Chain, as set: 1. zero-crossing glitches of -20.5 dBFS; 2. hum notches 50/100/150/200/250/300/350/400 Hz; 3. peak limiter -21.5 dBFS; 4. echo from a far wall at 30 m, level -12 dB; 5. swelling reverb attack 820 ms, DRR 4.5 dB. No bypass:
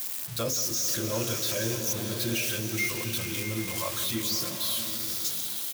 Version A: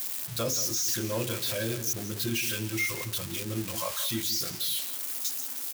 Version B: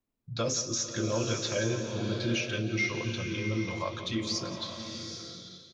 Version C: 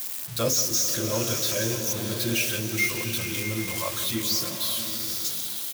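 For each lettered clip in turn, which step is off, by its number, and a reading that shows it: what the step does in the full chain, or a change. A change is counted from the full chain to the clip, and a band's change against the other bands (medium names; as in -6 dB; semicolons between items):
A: 5, echo-to-direct -3.5 dB to -12.5 dB; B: 1, distortion 0 dB; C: 3, mean gain reduction 2.0 dB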